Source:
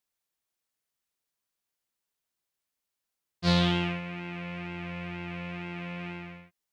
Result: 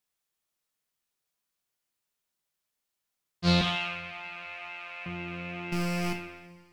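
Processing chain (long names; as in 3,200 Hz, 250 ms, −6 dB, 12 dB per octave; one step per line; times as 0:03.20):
0:03.61–0:05.06: high-pass filter 670 Hz 24 dB per octave
0:05.72–0:06.13: leveller curve on the samples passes 5
coupled-rooms reverb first 0.41 s, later 3 s, from −22 dB, DRR 4 dB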